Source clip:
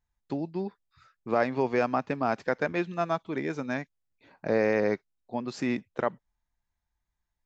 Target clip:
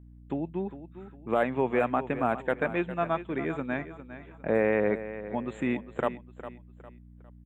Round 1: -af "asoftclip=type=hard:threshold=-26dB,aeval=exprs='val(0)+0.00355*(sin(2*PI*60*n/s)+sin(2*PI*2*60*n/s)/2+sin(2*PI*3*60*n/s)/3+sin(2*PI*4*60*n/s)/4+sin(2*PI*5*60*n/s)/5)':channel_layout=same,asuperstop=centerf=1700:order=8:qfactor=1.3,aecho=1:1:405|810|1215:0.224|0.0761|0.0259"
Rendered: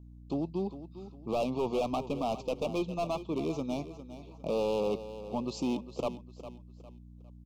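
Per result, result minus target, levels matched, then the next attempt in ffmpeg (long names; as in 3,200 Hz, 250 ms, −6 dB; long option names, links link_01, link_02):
hard clipping: distortion +20 dB; 2,000 Hz band −10.5 dB
-af "asoftclip=type=hard:threshold=-14.5dB,aeval=exprs='val(0)+0.00355*(sin(2*PI*60*n/s)+sin(2*PI*2*60*n/s)/2+sin(2*PI*3*60*n/s)/3+sin(2*PI*4*60*n/s)/4+sin(2*PI*5*60*n/s)/5)':channel_layout=same,asuperstop=centerf=1700:order=8:qfactor=1.3,aecho=1:1:405|810|1215:0.224|0.0761|0.0259"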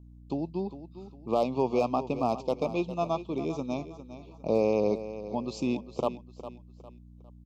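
2,000 Hz band −11.5 dB
-af "asoftclip=type=hard:threshold=-14.5dB,aeval=exprs='val(0)+0.00355*(sin(2*PI*60*n/s)+sin(2*PI*2*60*n/s)/2+sin(2*PI*3*60*n/s)/3+sin(2*PI*4*60*n/s)/4+sin(2*PI*5*60*n/s)/5)':channel_layout=same,asuperstop=centerf=5200:order=8:qfactor=1.3,aecho=1:1:405|810|1215:0.224|0.0761|0.0259"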